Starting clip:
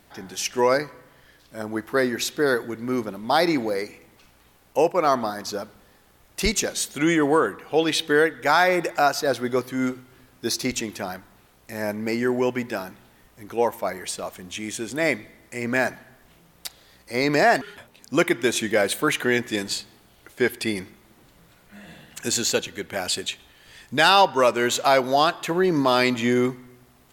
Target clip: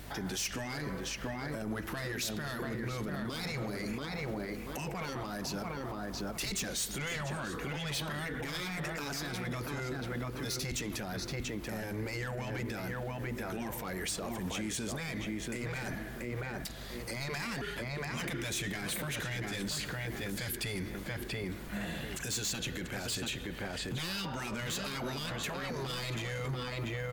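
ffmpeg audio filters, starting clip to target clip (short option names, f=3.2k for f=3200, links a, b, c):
-filter_complex "[0:a]asettb=1/sr,asplit=3[a][b][c];[a]atrim=end=19.754[d];[b]atrim=start=19.75:end=20.57,asetpts=PTS-STARTPTS,afade=t=in:d=0.004:c=qsin,afade=t=out:st=0.816:d=0.004:c=qsin,bass=f=250:g=4,treble=f=4k:g=7[e];[c]atrim=start=20.566[f];[d][e]acrossfade=d=0.004:c1=hsin:c2=qsin[g];[g][f]acrossfade=d=0.004:c1=qsin:c2=hsin,afftfilt=real='re*lt(hypot(re,im),0.282)':imag='im*lt(hypot(re,im),0.282)':win_size=1024:overlap=0.75,aeval=exprs='val(0)+0.00178*(sin(2*PI*50*n/s)+sin(2*PI*2*50*n/s)/2+sin(2*PI*3*50*n/s)/3+sin(2*PI*4*50*n/s)/4+sin(2*PI*5*50*n/s)/5)':c=same,asplit=2[h][i];[i]adelay=685,lowpass=f=1.7k:p=1,volume=-5dB,asplit=2[j][k];[k]adelay=685,lowpass=f=1.7k:p=1,volume=0.2,asplit=2[l][m];[m]adelay=685,lowpass=f=1.7k:p=1,volume=0.2[n];[h][j][l][n]amix=inputs=4:normalize=0,asoftclip=type=tanh:threshold=-27dB,acrossover=split=190[o][p];[p]acompressor=threshold=-44dB:ratio=2[q];[o][q]amix=inputs=2:normalize=0,alimiter=level_in=12dB:limit=-24dB:level=0:latency=1:release=39,volume=-12dB,adynamicequalizer=threshold=0.001:dfrequency=900:dqfactor=2:tfrequency=900:tqfactor=2:attack=5:release=100:ratio=0.375:range=2:mode=cutabove:tftype=bell,volume=7.5dB"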